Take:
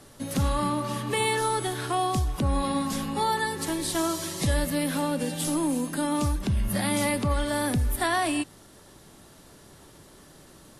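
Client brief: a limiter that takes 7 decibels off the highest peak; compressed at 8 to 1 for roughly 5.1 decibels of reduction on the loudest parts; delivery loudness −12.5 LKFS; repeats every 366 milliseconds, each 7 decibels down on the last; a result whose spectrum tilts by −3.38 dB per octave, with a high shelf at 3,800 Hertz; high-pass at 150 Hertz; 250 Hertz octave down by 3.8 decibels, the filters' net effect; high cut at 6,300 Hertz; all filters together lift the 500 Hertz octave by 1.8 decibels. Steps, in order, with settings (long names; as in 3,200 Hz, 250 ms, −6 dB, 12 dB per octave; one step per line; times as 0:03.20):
high-pass filter 150 Hz
low-pass filter 6,300 Hz
parametric band 250 Hz −5.5 dB
parametric band 500 Hz +3.5 dB
high-shelf EQ 3,800 Hz +7.5 dB
downward compressor 8 to 1, threshold −26 dBFS
brickwall limiter −23 dBFS
repeating echo 366 ms, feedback 45%, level −7 dB
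level +18.5 dB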